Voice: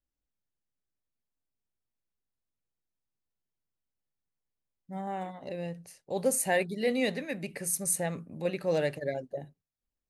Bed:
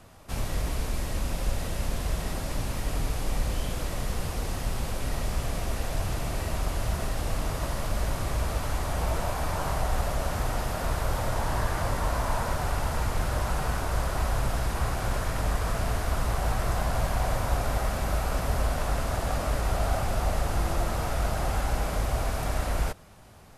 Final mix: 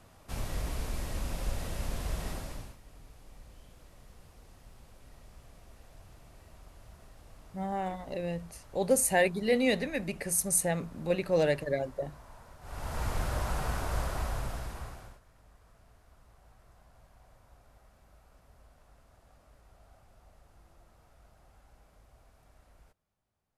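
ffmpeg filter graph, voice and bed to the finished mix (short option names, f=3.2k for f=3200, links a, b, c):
-filter_complex "[0:a]adelay=2650,volume=2dB[a];[1:a]volume=14.5dB,afade=t=out:st=2.29:d=0.48:silence=0.112202,afade=t=in:st=12.61:d=0.47:silence=0.1,afade=t=out:st=13.99:d=1.21:silence=0.0375837[b];[a][b]amix=inputs=2:normalize=0"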